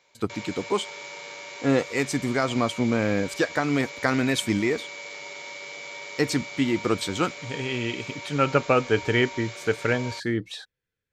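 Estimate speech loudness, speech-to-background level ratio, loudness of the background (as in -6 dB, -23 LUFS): -26.0 LUFS, 11.5 dB, -37.5 LUFS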